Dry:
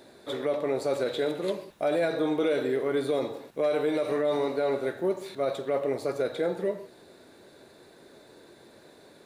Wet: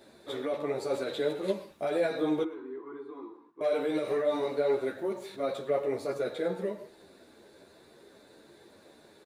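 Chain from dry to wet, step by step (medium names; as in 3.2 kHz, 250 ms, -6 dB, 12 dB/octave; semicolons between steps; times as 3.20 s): 2.43–3.61 s: two resonant band-passes 590 Hz, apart 1.6 oct; delay 110 ms -20 dB; three-phase chorus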